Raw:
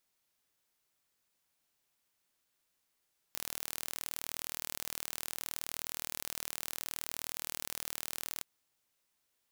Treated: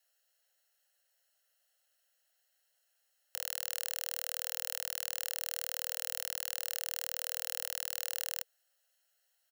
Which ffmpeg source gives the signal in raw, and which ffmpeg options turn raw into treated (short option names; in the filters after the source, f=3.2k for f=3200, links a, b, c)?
-f lavfi -i "aevalsrc='0.282*eq(mod(n,1122),0)':d=5.08:s=44100"
-af "highpass=65,aecho=1:1:0.8:0.94,afreqshift=430"